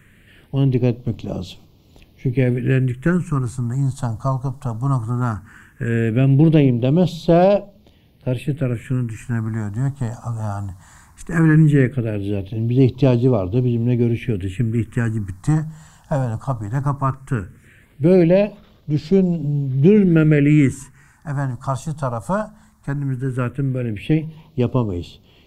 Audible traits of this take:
phaser sweep stages 4, 0.17 Hz, lowest notch 370–1,700 Hz

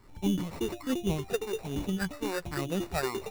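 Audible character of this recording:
phaser sweep stages 6, 1.2 Hz, lowest notch 160–1,500 Hz
aliases and images of a low sample rate 3,200 Hz, jitter 0%

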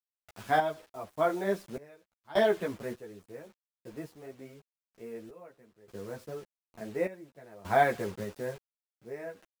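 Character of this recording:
a quantiser's noise floor 8 bits, dither none
sample-and-hold tremolo 1.7 Hz, depth 95%
a shimmering, thickened sound

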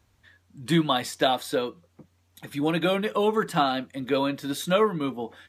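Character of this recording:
background noise floor −66 dBFS
spectral slope −4.0 dB per octave

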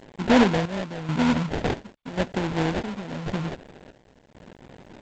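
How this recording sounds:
a quantiser's noise floor 8 bits, dither none
chopped level 0.92 Hz, depth 65%, duty 60%
aliases and images of a low sample rate 1,200 Hz, jitter 20%
G.722

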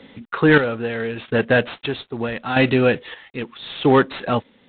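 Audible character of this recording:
chopped level 0.78 Hz, depth 65%, duty 45%
a quantiser's noise floor 10 bits, dither none
IMA ADPCM

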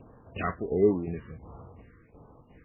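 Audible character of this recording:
a quantiser's noise floor 12 bits, dither none
tremolo saw down 2.8 Hz, depth 60%
phaser sweep stages 4, 1.4 Hz, lowest notch 720–3,100 Hz
MP3

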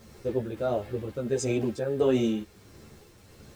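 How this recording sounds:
tremolo triangle 1.5 Hz, depth 55%
a quantiser's noise floor 10 bits, dither none
a shimmering, thickened sound

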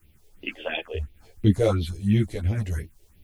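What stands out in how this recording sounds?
a quantiser's noise floor 12 bits, dither triangular
phaser sweep stages 4, 2.9 Hz, lowest notch 190–1,400 Hz
sample-and-hold tremolo
a shimmering, thickened sound

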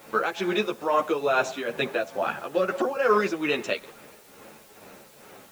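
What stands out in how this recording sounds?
tremolo triangle 2.3 Hz, depth 75%
a quantiser's noise floor 10 bits, dither triangular
a shimmering, thickened sound

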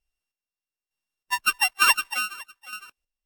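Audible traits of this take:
a buzz of ramps at a fixed pitch in blocks of 16 samples
chopped level 1.1 Hz, depth 60%, duty 35%
AAC

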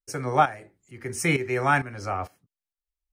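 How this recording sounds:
tremolo saw up 2.2 Hz, depth 75%

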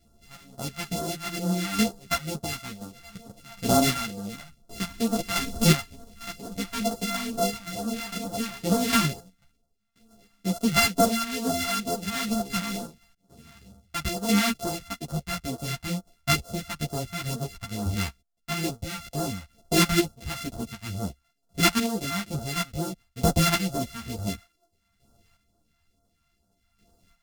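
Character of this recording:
a buzz of ramps at a fixed pitch in blocks of 64 samples
phaser sweep stages 2, 2.2 Hz, lowest notch 400–2,200 Hz
chopped level 0.56 Hz, depth 60%, duty 20%
a shimmering, thickened sound

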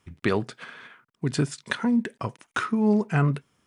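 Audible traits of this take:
background noise floor −74 dBFS
spectral slope −5.5 dB per octave

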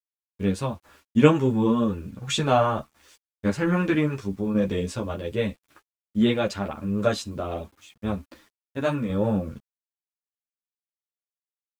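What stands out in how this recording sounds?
tremolo saw down 0.88 Hz, depth 50%
a quantiser's noise floor 10 bits, dither none
a shimmering, thickened sound

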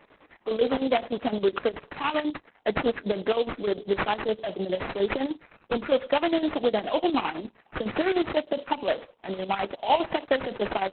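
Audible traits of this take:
aliases and images of a low sample rate 3,800 Hz, jitter 20%
chopped level 9.8 Hz, depth 60%, duty 55%
Opus

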